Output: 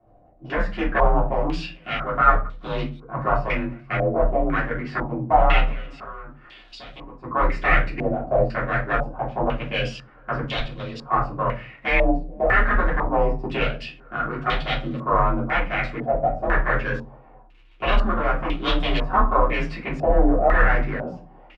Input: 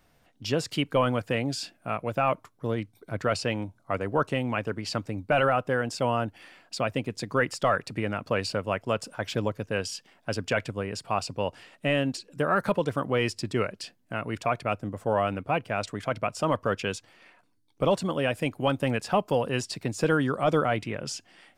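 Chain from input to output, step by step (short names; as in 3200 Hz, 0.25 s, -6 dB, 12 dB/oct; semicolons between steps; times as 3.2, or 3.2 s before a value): one-sided fold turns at -25.5 dBFS; 5.62–7.24 compressor 12:1, threshold -42 dBFS, peak gain reduction 18.5 dB; frequency shift +33 Hz; crackle 88/s -44 dBFS; outdoor echo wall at 75 m, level -29 dB; 10.42–11.02 level quantiser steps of 10 dB; low shelf 80 Hz +8.5 dB; shoebox room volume 140 m³, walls furnished, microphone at 3.2 m; stepped low-pass 2 Hz 670–3500 Hz; gain -5 dB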